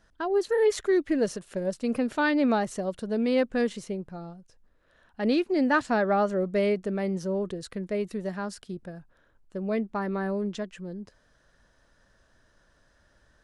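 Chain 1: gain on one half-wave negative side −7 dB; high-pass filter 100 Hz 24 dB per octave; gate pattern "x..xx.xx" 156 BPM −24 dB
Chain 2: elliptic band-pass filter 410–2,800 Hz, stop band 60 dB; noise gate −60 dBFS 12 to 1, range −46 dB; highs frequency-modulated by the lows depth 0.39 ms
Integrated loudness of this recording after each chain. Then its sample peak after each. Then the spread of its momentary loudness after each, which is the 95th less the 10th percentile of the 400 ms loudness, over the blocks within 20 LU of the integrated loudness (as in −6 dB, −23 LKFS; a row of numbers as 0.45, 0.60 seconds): −32.5, −30.5 LKFS; −14.0, −12.5 dBFS; 13, 16 LU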